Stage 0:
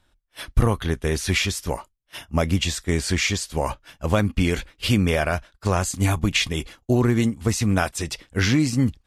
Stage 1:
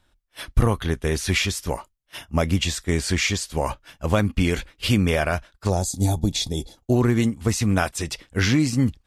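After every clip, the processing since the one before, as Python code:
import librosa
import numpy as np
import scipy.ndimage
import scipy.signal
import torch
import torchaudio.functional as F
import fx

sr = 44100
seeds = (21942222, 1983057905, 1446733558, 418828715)

y = fx.spec_box(x, sr, start_s=5.7, length_s=1.07, low_hz=940.0, high_hz=3300.0, gain_db=-17)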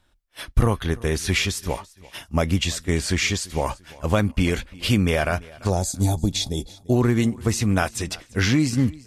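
y = fx.echo_feedback(x, sr, ms=341, feedback_pct=33, wet_db=-22)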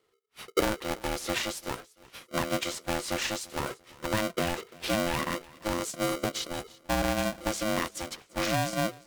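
y = x * np.sign(np.sin(2.0 * np.pi * 430.0 * np.arange(len(x)) / sr))
y = y * 10.0 ** (-9.0 / 20.0)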